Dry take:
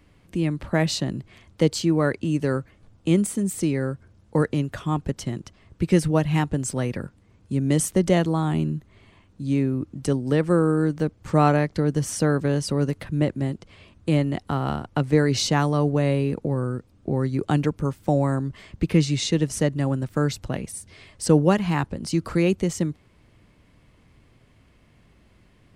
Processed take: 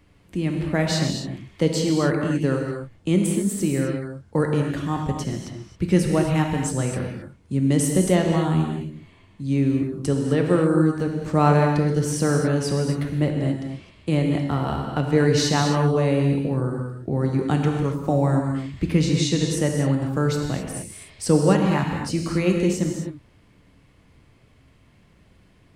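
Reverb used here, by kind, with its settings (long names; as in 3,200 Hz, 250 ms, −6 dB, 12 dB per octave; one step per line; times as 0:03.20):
reverb whose tail is shaped and stops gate 290 ms flat, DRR 1.5 dB
level −1 dB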